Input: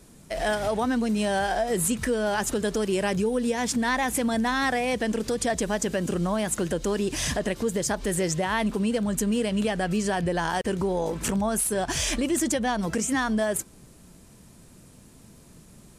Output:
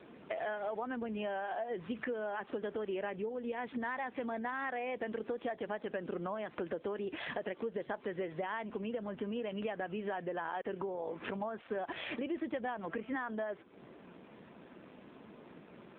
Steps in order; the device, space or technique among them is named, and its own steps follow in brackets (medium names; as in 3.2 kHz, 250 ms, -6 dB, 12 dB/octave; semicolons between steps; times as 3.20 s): voicemail (band-pass 340–2700 Hz; compression 6:1, threshold -42 dBFS, peak gain reduction 19 dB; trim +6.5 dB; AMR-NB 7.4 kbps 8 kHz)